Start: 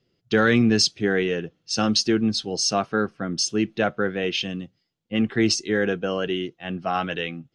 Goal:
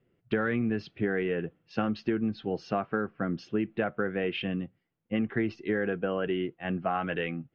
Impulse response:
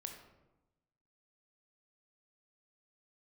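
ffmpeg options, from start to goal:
-af "lowpass=frequency=2400:width=0.5412,lowpass=frequency=2400:width=1.3066,acompressor=threshold=-25dB:ratio=6"

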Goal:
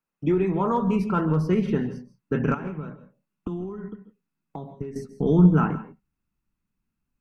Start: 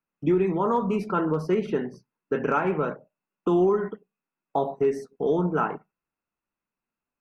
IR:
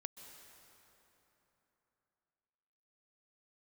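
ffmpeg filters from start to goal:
-filter_complex "[0:a]asettb=1/sr,asplit=3[link_01][link_02][link_03];[link_01]atrim=end=2.544[link_04];[link_02]atrim=start=2.54:end=4.96,asetpts=PTS-STARTPTS,afade=type=in:duration=0.004:curve=qsin,afade=type=out:start_time=2.416:duration=0.004:curve=qsin,acompressor=threshold=-37dB:ratio=4[link_05];[link_03]atrim=start=4.956[link_06];[link_04][link_05]acrossfade=duration=0.004:curve1=hsin:curve2=qsin[link_07];[link_07][link_06]acrossfade=duration=0.004:curve1=qsin:curve2=hsin,asubboost=boost=9.5:cutoff=180[link_08];[1:a]atrim=start_sample=2205,afade=type=out:start_time=0.21:duration=0.01,atrim=end_sample=9702,asetrate=41454,aresample=44100[link_09];[link_08][link_09]afir=irnorm=-1:irlink=0,volume=5dB"

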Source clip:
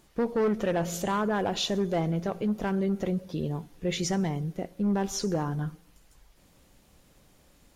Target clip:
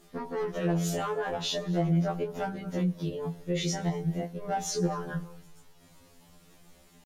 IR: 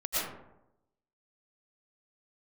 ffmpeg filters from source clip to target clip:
-filter_complex "[0:a]atempo=1.1,asplit=2[link_01][link_02];[1:a]atrim=start_sample=2205,adelay=94[link_03];[link_02][link_03]afir=irnorm=-1:irlink=0,volume=-30.5dB[link_04];[link_01][link_04]amix=inputs=2:normalize=0,flanger=delay=16.5:depth=2.5:speed=0.42,alimiter=level_in=4dB:limit=-24dB:level=0:latency=1:release=248,volume=-4dB,afftfilt=real='re*2*eq(mod(b,4),0)':imag='im*2*eq(mod(b,4),0)':win_size=2048:overlap=0.75,volume=8.5dB"

